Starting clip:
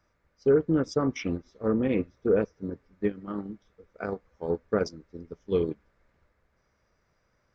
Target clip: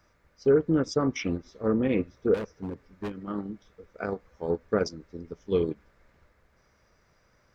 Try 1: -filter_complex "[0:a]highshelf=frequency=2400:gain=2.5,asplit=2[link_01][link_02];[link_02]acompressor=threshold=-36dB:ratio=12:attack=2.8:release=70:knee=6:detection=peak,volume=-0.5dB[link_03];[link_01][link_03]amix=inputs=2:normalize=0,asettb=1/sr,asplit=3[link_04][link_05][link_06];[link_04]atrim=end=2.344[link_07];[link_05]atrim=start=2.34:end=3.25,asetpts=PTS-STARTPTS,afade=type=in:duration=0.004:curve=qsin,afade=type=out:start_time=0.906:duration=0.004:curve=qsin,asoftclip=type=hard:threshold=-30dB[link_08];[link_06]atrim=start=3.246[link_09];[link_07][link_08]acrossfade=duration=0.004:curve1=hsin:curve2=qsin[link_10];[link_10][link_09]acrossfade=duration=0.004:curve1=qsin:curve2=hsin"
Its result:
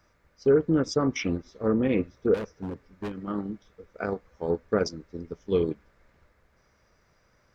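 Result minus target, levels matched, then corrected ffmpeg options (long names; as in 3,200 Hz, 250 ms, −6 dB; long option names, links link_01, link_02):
downward compressor: peak gain reduction −10.5 dB
-filter_complex "[0:a]highshelf=frequency=2400:gain=2.5,asplit=2[link_01][link_02];[link_02]acompressor=threshold=-47.5dB:ratio=12:attack=2.8:release=70:knee=6:detection=peak,volume=-0.5dB[link_03];[link_01][link_03]amix=inputs=2:normalize=0,asettb=1/sr,asplit=3[link_04][link_05][link_06];[link_04]atrim=end=2.344[link_07];[link_05]atrim=start=2.34:end=3.25,asetpts=PTS-STARTPTS,afade=type=in:duration=0.004:curve=qsin,afade=type=out:start_time=0.906:duration=0.004:curve=qsin,asoftclip=type=hard:threshold=-30dB[link_08];[link_06]atrim=start=3.246[link_09];[link_07][link_08]acrossfade=duration=0.004:curve1=hsin:curve2=qsin[link_10];[link_10][link_09]acrossfade=duration=0.004:curve1=qsin:curve2=hsin"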